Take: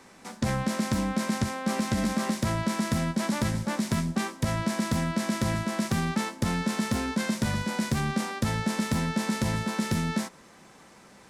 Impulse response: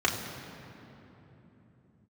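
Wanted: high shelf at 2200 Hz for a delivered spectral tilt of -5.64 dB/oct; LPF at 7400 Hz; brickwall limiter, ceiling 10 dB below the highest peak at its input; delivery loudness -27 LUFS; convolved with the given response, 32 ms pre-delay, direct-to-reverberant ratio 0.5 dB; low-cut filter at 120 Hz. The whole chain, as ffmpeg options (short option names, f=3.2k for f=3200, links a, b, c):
-filter_complex "[0:a]highpass=120,lowpass=7.4k,highshelf=f=2.2k:g=-6.5,alimiter=level_in=1dB:limit=-24dB:level=0:latency=1,volume=-1dB,asplit=2[a][b];[1:a]atrim=start_sample=2205,adelay=32[c];[b][c]afir=irnorm=-1:irlink=0,volume=-13dB[d];[a][d]amix=inputs=2:normalize=0,volume=4dB"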